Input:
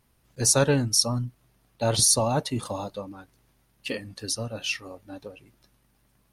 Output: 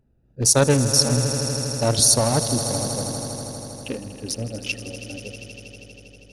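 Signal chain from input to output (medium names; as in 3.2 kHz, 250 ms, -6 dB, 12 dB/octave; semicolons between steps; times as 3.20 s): local Wiener filter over 41 samples; on a send: echo with a slow build-up 80 ms, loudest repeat 5, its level -14.5 dB; on the sum: trim +4.5 dB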